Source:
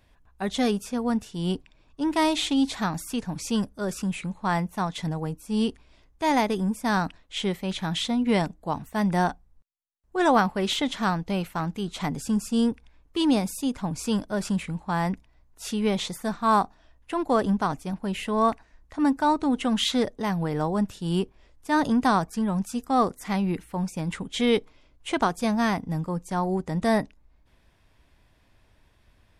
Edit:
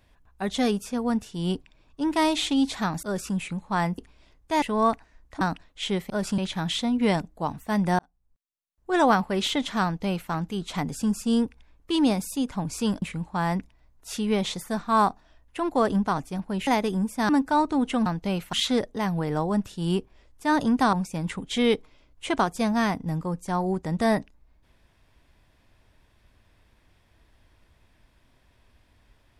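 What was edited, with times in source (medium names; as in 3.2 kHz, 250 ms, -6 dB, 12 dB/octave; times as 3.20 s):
3.03–3.76 s: delete
4.71–5.69 s: delete
6.33–6.95 s: swap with 18.21–19.00 s
9.25–10.20 s: fade in
11.10–11.57 s: copy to 19.77 s
14.28–14.56 s: move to 7.64 s
22.17–23.76 s: delete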